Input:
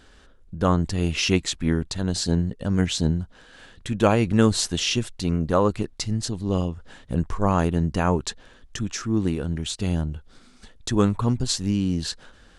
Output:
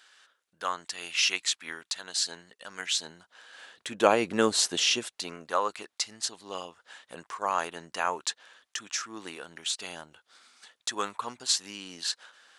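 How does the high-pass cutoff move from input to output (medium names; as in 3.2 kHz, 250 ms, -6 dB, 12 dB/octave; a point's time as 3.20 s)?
2.96 s 1.3 kHz
4.10 s 420 Hz
4.88 s 420 Hz
5.46 s 930 Hz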